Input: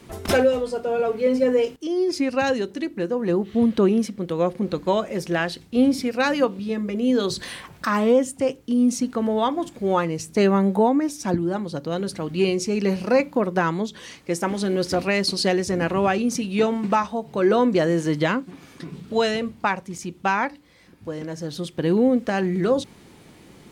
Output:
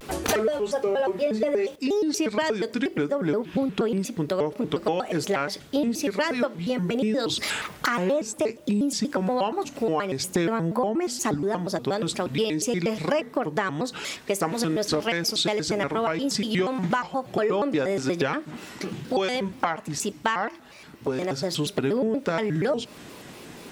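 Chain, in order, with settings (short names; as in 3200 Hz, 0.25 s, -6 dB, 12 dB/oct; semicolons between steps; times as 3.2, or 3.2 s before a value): low shelf 200 Hz -10.5 dB; compressor 6:1, threshold -30 dBFS, peak gain reduction 14 dB; on a send at -22.5 dB: reverb RT60 1.5 s, pre-delay 5 ms; on the sum: shaped vibrato square 4.2 Hz, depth 250 cents; gain +8 dB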